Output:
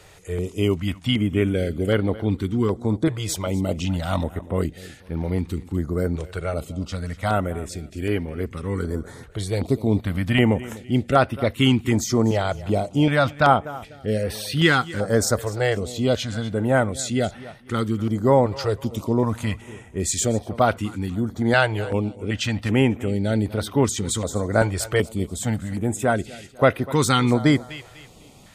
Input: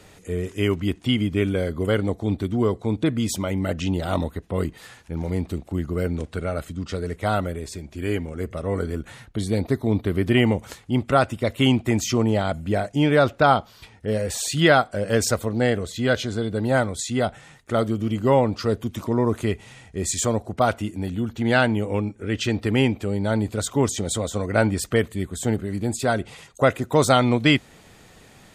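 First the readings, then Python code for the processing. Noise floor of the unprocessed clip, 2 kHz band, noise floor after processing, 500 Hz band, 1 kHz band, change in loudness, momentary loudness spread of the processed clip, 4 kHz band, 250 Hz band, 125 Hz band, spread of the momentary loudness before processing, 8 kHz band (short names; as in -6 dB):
-51 dBFS, +0.5 dB, -47 dBFS, 0.0 dB, +0.5 dB, +0.5 dB, 10 LU, 0.0 dB, +0.5 dB, +1.5 dB, 10 LU, +0.5 dB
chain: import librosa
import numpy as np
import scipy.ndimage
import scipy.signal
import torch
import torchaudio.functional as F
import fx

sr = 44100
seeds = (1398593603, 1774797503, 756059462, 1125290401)

p1 = x + fx.echo_feedback(x, sr, ms=248, feedback_pct=34, wet_db=-18.5, dry=0)
p2 = fx.filter_held_notch(p1, sr, hz=2.6, low_hz=240.0, high_hz=7200.0)
y = p2 * librosa.db_to_amplitude(1.5)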